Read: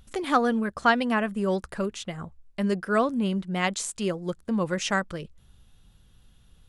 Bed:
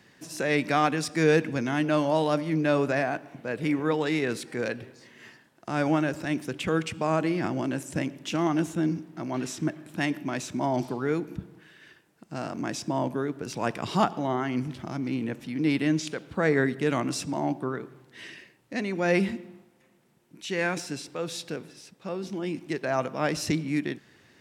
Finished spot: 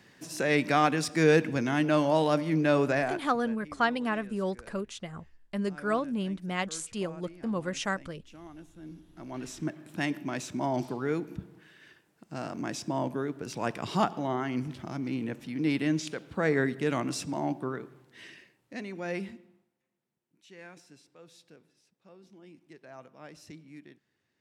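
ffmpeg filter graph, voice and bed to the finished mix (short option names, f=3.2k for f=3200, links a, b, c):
-filter_complex "[0:a]adelay=2950,volume=-5.5dB[a];[1:a]volume=19dB,afade=t=out:st=2.91:d=0.67:silence=0.0794328,afade=t=in:st=8.8:d=1.13:silence=0.105925,afade=t=out:st=17.66:d=2.14:silence=0.125893[b];[a][b]amix=inputs=2:normalize=0"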